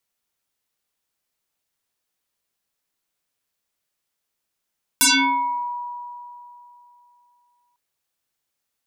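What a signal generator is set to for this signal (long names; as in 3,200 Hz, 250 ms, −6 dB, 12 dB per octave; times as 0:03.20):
two-operator FM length 2.75 s, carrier 969 Hz, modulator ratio 1.28, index 11, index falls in 0.69 s exponential, decay 3.00 s, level −11.5 dB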